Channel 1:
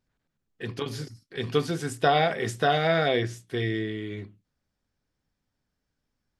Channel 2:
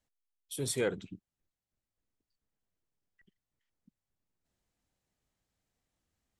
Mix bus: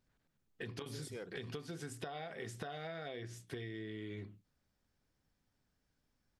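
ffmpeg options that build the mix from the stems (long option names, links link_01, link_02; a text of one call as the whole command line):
ffmpeg -i stem1.wav -i stem2.wav -filter_complex "[0:a]acompressor=threshold=-37dB:ratio=3,volume=-0.5dB[link_01];[1:a]adelay=350,volume=-12.5dB[link_02];[link_01][link_02]amix=inputs=2:normalize=0,acompressor=threshold=-41dB:ratio=6" out.wav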